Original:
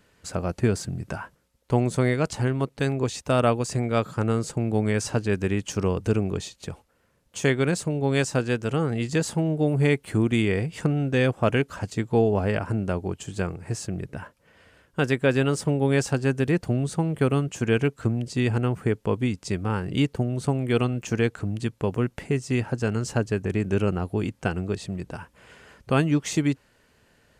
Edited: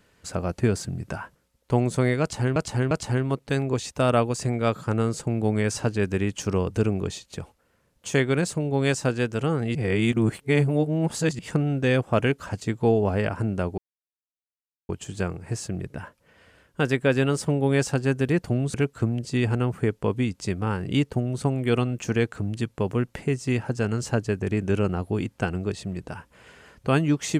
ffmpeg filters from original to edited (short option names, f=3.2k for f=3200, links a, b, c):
-filter_complex "[0:a]asplit=7[a][b][c][d][e][f][g];[a]atrim=end=2.562[h];[b]atrim=start=2.208:end=2.562[i];[c]atrim=start=2.208:end=9.052[j];[d]atrim=start=9.048:end=10.692,asetpts=PTS-STARTPTS,areverse[k];[e]atrim=start=10.688:end=13.08,asetpts=PTS-STARTPTS,afade=t=out:st=2.388:d=0.004:c=hsin,apad=pad_dur=1.11[l];[f]atrim=start=13.08:end=16.932,asetpts=PTS-STARTPTS,afade=t=in:d=0.004:c=hsin[m];[g]atrim=start=17.768[n];[h][i]acrossfade=d=0.004:c1=hsin:c2=hsin[o];[o][j]acrossfade=d=0.004:c1=hsin:c2=hsin[p];[p][k]acrossfade=d=0.004:c1=hsin:c2=hsin[q];[l][m]concat=n=2:v=0:a=1[r];[q][r]acrossfade=d=0.004:c1=hsin:c2=hsin[s];[s][n]acrossfade=d=0.004:c1=hsin:c2=hsin"